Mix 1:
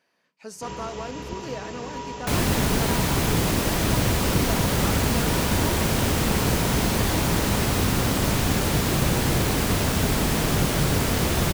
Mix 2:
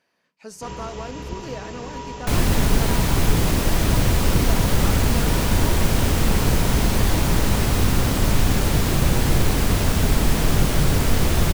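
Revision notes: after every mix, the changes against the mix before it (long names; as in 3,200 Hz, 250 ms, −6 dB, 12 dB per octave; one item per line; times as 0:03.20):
master: remove high-pass filter 110 Hz 6 dB per octave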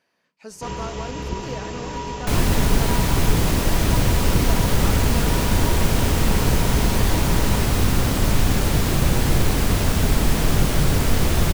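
first sound +4.0 dB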